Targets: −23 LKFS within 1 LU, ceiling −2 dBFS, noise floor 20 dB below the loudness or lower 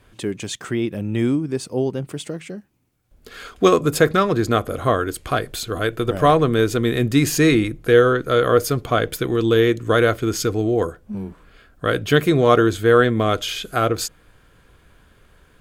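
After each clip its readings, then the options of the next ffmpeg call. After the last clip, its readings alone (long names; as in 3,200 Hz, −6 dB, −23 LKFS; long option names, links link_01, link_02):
integrated loudness −19.0 LKFS; sample peak −1.0 dBFS; target loudness −23.0 LKFS
→ -af "volume=-4dB"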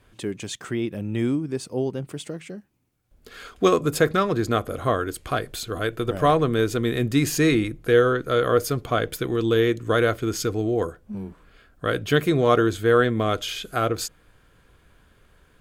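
integrated loudness −23.0 LKFS; sample peak −5.0 dBFS; background noise floor −59 dBFS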